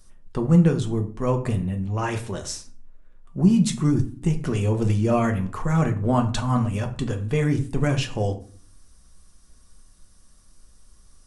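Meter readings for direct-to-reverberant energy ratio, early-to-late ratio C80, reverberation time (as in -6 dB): 4.0 dB, 17.5 dB, 0.45 s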